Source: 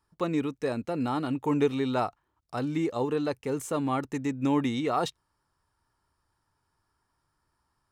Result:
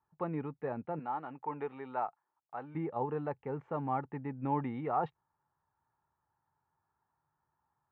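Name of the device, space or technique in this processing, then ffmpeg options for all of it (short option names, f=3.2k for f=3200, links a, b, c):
bass cabinet: -filter_complex "[0:a]asettb=1/sr,asplit=3[a][b][c];[a]atrim=end=0.994[d];[b]atrim=start=0.99:end=2.75,asetpts=PTS-STARTPTS,afade=t=in:d=0.004:c=qsin,afade=t=out:st=1.756:d=0.004:c=qsin,highpass=f=720:p=1[e];[c]atrim=start=2.746[f];[d][e]acrossfade=d=0.004:c1=hsin:c2=qsin[g];[g][f]acrossfade=d=0.004:c1=qsin:c2=hsin,highpass=82,equalizer=f=150:t=q:w=4:g=6,equalizer=f=290:t=q:w=4:g=-4,equalizer=f=830:t=q:w=4:g=10,lowpass=f=2k:w=0.5412,lowpass=f=2k:w=1.3066,volume=-8dB"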